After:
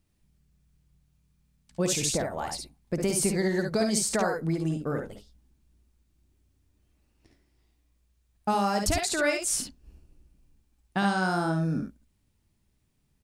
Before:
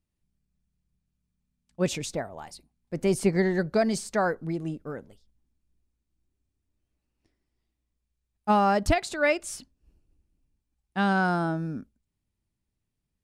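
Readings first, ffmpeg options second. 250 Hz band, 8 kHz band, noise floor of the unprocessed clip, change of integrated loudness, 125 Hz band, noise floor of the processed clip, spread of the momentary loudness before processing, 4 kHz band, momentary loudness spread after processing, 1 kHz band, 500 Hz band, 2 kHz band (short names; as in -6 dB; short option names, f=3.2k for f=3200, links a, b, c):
-0.5 dB, +10.0 dB, -82 dBFS, -1.0 dB, +0.5 dB, -71 dBFS, 16 LU, +5.0 dB, 10 LU, -2.5 dB, -2.0 dB, -1.5 dB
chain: -filter_complex "[0:a]acrossover=split=5000[a][b];[a]acompressor=threshold=-36dB:ratio=4[c];[c][b]amix=inputs=2:normalize=0,aecho=1:1:55|69:0.422|0.501,volume=9dB"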